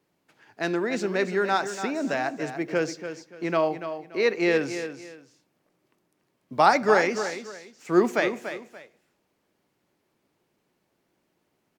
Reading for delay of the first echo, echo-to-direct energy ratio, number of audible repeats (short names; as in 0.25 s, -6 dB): 0.288 s, -9.5 dB, 2